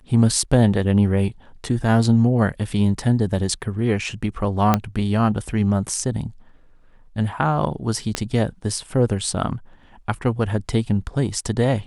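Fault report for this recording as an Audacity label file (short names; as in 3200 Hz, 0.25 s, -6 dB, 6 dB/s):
4.740000	4.740000	pop -3 dBFS
8.150000	8.150000	pop -7 dBFS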